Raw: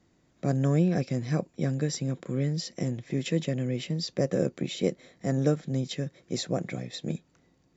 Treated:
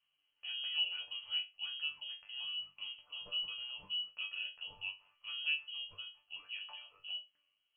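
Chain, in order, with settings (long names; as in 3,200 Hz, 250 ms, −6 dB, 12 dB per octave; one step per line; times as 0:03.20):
voice inversion scrambler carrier 3,100 Hz
resonators tuned to a chord G2 fifth, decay 0.25 s
level −5 dB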